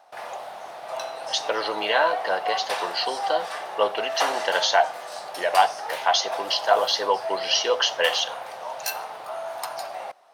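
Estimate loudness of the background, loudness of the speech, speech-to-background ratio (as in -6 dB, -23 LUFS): -31.5 LUFS, -24.0 LUFS, 7.5 dB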